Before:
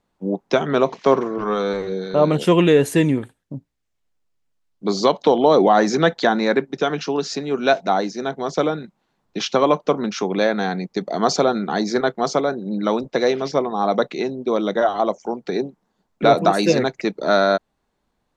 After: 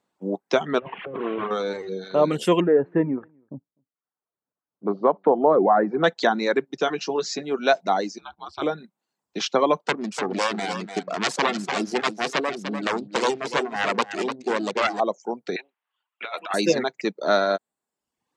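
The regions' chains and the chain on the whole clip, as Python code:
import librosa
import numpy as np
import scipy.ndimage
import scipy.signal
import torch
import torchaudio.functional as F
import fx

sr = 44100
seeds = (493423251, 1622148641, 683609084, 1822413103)

y = fx.chain(x, sr, fx.delta_mod(bps=16000, step_db=-30.0),
    fx.over_compress(threshold_db=-25.0, ratio=-1.0), at=(0.79, 1.51))
y = fx.chain(y, sr, fx.lowpass(hz=1500.0, slope=24),
    fx.echo_single(ms=251, db=-23.0), at=(2.6, 6.04))
y = fx.chain(y, sr, fx.brickwall_lowpass(high_hz=8000.0),
    fx.doubler(ms=16.0, db=-7.0), at=(6.86, 7.43))
y = fx.chain(y, sr, fx.ring_mod(carrier_hz=72.0),
    fx.peak_eq(hz=250.0, db=-11.0, octaves=1.5),
    fx.fixed_phaser(hz=1900.0, stages=6), at=(8.18, 8.62))
y = fx.chain(y, sr, fx.self_delay(depth_ms=0.85),
    fx.lowpass(hz=7200.0, slope=24),
    fx.echo_single(ms=296, db=-7.5), at=(9.82, 15.0))
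y = fx.chain(y, sr, fx.highpass(hz=1300.0, slope=12),
    fx.high_shelf_res(hz=4000.0, db=-12.5, q=3.0),
    fx.over_compress(threshold_db=-26.0, ratio=-0.5), at=(15.56, 16.54))
y = scipy.signal.sosfilt(scipy.signal.bessel(2, 220.0, 'highpass', norm='mag', fs=sr, output='sos'), y)
y = fx.dereverb_blind(y, sr, rt60_s=0.73)
y = fx.peak_eq(y, sr, hz=7800.0, db=5.0, octaves=0.26)
y = y * librosa.db_to_amplitude(-2.0)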